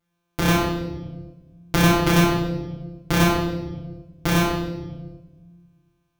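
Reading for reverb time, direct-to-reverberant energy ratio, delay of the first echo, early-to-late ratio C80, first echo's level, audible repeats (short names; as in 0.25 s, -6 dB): 1.3 s, -5.5 dB, none, 4.5 dB, none, none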